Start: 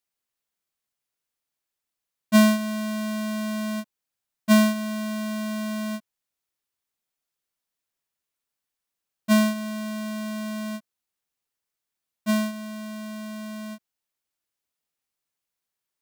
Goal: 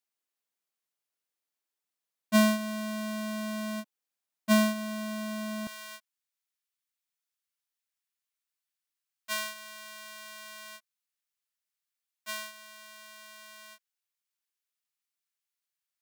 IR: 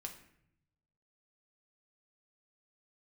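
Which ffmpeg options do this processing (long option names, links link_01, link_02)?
-af "asetnsamples=nb_out_samples=441:pad=0,asendcmd='5.67 highpass f 1300',highpass=210,volume=-4dB"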